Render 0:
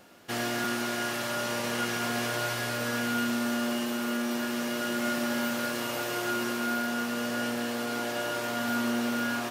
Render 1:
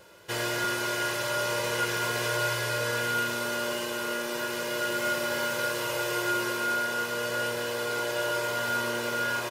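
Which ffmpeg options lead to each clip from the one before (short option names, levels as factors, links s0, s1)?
-af "aecho=1:1:2:0.82"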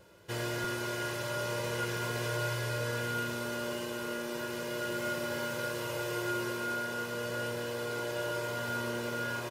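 -af "lowshelf=f=350:g=10.5,volume=0.398"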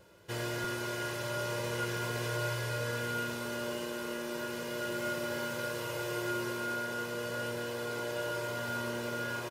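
-af "aecho=1:1:937:0.158,volume=0.891"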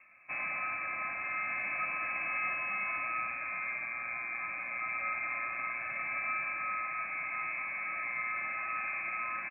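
-af "lowpass=f=2300:t=q:w=0.5098,lowpass=f=2300:t=q:w=0.6013,lowpass=f=2300:t=q:w=0.9,lowpass=f=2300:t=q:w=2.563,afreqshift=-2700"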